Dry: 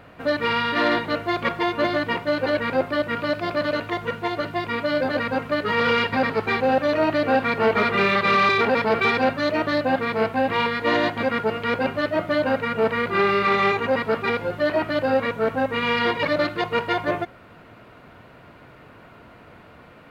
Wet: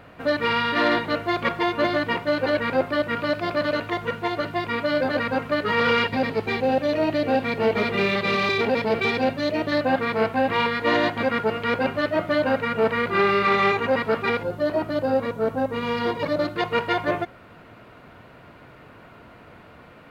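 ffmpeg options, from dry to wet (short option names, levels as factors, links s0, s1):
-filter_complex "[0:a]asettb=1/sr,asplit=3[s0][s1][s2];[s0]atrim=end=6.084[s3];[s1]atrim=start=6.08:end=9.72,asetpts=PTS-STARTPTS,afade=t=in:d=0.004:c=qsin,afade=t=out:st=3.636:d=0.004:c=qsin,equalizer=f=1300:t=o:w=1.1:g=-9[s4];[s2]atrim=start=9.716[s5];[s3][s4]acrossfade=d=0.004:c1=hsin:c2=qsin[s6];[s6][s5]acrossfade=d=0.004:c1=qsin:c2=hsin,asettb=1/sr,asplit=3[s7][s8][s9];[s7]atrim=end=14.434[s10];[s8]atrim=start=14.43:end=16.56,asetpts=PTS-STARTPTS,afade=t=in:d=0.004:c=qsin,afade=t=out:st=2.126:d=0.004:c=qsin,equalizer=f=2200:t=o:w=1.8:g=-9.5[s11];[s9]atrim=start=16.556[s12];[s10][s11]acrossfade=d=0.004:c1=hsin:c2=qsin[s13];[s13][s12]acrossfade=d=0.004:c1=qsin:c2=hsin"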